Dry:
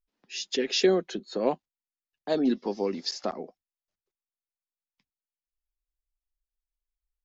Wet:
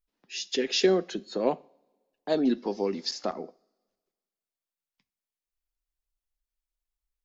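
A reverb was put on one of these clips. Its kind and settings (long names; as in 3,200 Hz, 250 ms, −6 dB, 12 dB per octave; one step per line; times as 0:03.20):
coupled-rooms reverb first 0.44 s, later 1.6 s, from −22 dB, DRR 17 dB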